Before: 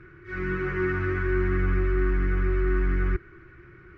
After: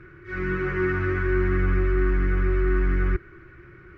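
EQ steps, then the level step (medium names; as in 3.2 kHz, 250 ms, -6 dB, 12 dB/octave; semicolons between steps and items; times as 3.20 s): peaking EQ 570 Hz +3.5 dB 0.28 oct; +2.0 dB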